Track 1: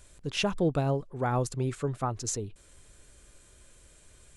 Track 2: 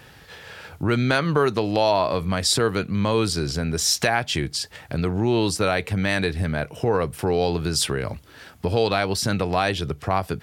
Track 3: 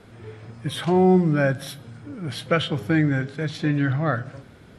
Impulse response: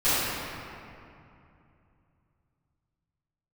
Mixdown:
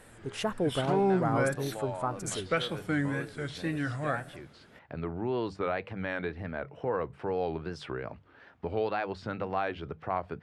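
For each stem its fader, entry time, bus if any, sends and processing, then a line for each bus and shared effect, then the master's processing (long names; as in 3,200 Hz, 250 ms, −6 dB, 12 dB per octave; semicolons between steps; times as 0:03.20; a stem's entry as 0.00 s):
0.0 dB, 0.00 s, no send, flat-topped bell 4,000 Hz −8.5 dB
−7.5 dB, 0.00 s, no send, low-pass filter 1,800 Hz 12 dB per octave; mains-hum notches 50/100/150/200 Hz; automatic ducking −10 dB, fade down 1.05 s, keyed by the first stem
−6.5 dB, 0.00 s, no send, no processing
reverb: not used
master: low-shelf EQ 220 Hz −8.5 dB; tape wow and flutter 120 cents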